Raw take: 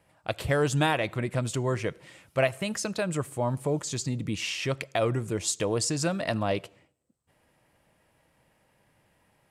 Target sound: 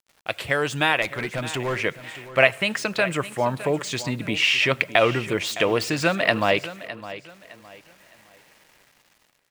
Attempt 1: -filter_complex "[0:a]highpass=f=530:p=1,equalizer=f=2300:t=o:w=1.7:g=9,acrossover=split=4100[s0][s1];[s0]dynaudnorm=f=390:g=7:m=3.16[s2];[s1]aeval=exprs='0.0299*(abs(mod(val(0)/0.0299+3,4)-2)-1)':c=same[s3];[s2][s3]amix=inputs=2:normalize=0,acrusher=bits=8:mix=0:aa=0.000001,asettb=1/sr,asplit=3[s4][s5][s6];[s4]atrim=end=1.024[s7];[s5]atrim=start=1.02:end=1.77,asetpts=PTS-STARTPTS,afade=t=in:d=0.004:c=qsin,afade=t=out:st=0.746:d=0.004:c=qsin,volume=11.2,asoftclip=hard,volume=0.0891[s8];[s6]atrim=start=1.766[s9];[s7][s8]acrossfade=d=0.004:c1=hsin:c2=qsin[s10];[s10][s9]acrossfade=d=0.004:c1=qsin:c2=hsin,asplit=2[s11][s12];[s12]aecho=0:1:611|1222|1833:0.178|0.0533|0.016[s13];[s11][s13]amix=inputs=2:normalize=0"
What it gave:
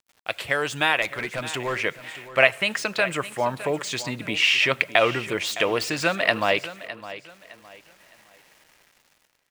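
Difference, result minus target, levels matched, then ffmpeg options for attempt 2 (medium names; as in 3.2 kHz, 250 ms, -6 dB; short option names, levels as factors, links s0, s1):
250 Hz band -3.5 dB
-filter_complex "[0:a]highpass=f=230:p=1,equalizer=f=2300:t=o:w=1.7:g=9,acrossover=split=4100[s0][s1];[s0]dynaudnorm=f=390:g=7:m=3.16[s2];[s1]aeval=exprs='0.0299*(abs(mod(val(0)/0.0299+3,4)-2)-1)':c=same[s3];[s2][s3]amix=inputs=2:normalize=0,acrusher=bits=8:mix=0:aa=0.000001,asettb=1/sr,asplit=3[s4][s5][s6];[s4]atrim=end=1.024[s7];[s5]atrim=start=1.02:end=1.77,asetpts=PTS-STARTPTS,afade=t=in:d=0.004:c=qsin,afade=t=out:st=0.746:d=0.004:c=qsin,volume=11.2,asoftclip=hard,volume=0.0891[s8];[s6]atrim=start=1.766[s9];[s7][s8]acrossfade=d=0.004:c1=hsin:c2=qsin[s10];[s10][s9]acrossfade=d=0.004:c1=qsin:c2=hsin,asplit=2[s11][s12];[s12]aecho=0:1:611|1222|1833:0.178|0.0533|0.016[s13];[s11][s13]amix=inputs=2:normalize=0"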